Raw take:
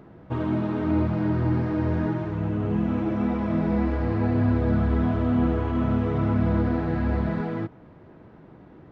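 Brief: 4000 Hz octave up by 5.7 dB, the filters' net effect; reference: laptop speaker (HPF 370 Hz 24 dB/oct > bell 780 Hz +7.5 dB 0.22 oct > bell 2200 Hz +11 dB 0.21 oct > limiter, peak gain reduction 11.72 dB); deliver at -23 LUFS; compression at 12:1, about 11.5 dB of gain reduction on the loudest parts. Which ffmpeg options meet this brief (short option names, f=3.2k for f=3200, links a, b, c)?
-af "equalizer=f=4k:t=o:g=7,acompressor=threshold=-30dB:ratio=12,highpass=f=370:w=0.5412,highpass=f=370:w=1.3066,equalizer=f=780:t=o:w=0.22:g=7.5,equalizer=f=2.2k:t=o:w=0.21:g=11,volume=25dB,alimiter=limit=-14.5dB:level=0:latency=1"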